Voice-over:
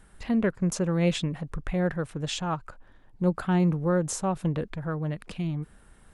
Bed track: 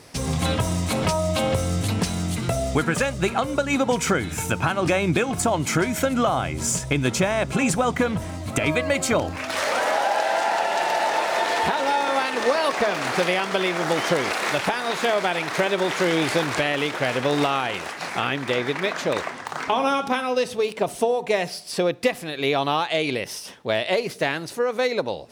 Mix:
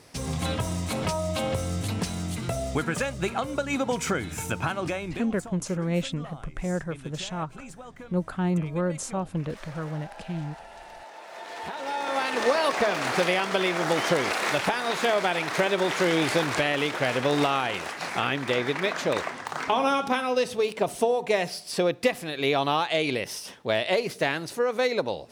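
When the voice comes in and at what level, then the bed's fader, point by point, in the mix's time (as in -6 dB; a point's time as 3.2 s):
4.90 s, -2.5 dB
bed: 4.72 s -5.5 dB
5.6 s -22.5 dB
11.15 s -22.5 dB
12.33 s -2 dB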